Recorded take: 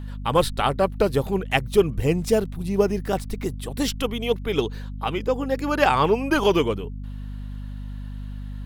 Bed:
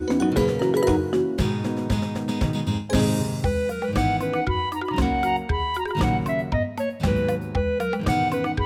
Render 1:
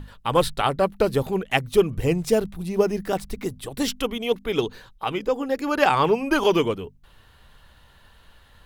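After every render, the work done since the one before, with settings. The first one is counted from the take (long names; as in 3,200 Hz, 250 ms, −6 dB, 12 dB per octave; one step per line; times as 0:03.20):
mains-hum notches 50/100/150/200/250 Hz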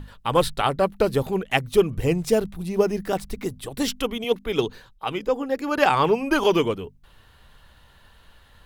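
0:04.24–0:05.78: multiband upward and downward expander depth 40%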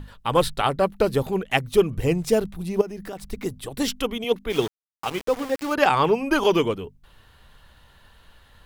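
0:02.81–0:03.33: downward compressor 4 to 1, threshold −32 dBFS
0:04.50–0:05.74: centre clipping without the shift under −30.5 dBFS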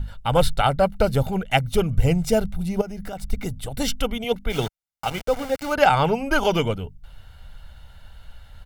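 low-shelf EQ 110 Hz +9.5 dB
comb filter 1.4 ms, depth 57%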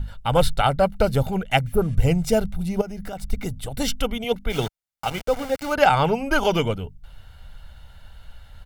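0:01.69–0:01.92: healed spectral selection 1,600–10,000 Hz after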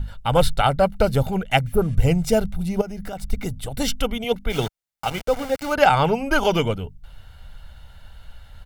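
level +1 dB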